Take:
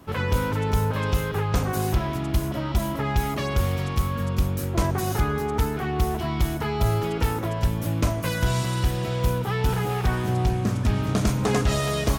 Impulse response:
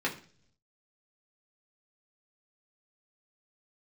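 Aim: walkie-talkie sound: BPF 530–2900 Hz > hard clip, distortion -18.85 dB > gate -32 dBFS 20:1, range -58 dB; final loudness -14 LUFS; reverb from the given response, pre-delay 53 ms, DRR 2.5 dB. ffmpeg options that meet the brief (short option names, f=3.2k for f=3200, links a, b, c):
-filter_complex "[0:a]asplit=2[a][b];[1:a]atrim=start_sample=2205,adelay=53[c];[b][c]afir=irnorm=-1:irlink=0,volume=-10.5dB[d];[a][d]amix=inputs=2:normalize=0,highpass=530,lowpass=2.9k,asoftclip=type=hard:threshold=-23dB,agate=range=-58dB:threshold=-32dB:ratio=20,volume=16.5dB"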